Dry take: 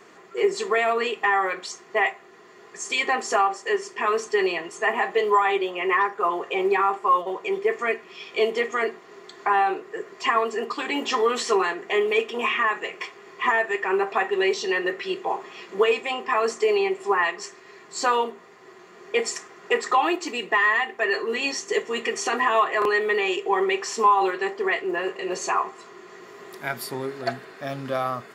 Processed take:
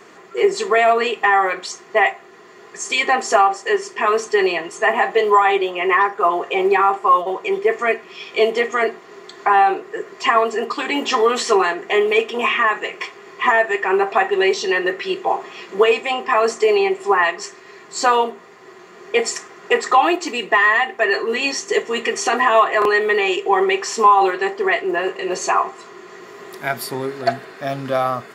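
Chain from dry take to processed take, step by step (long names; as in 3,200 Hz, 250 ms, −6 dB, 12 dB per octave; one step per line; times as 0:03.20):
dynamic equaliser 710 Hz, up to +5 dB, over −39 dBFS, Q 5.5
level +5.5 dB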